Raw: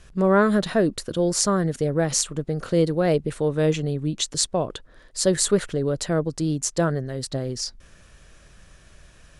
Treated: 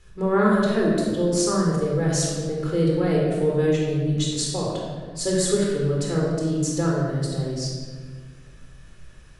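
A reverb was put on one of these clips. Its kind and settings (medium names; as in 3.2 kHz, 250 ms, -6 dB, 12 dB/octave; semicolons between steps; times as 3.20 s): simulated room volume 1700 m³, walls mixed, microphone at 4.1 m; trim -8 dB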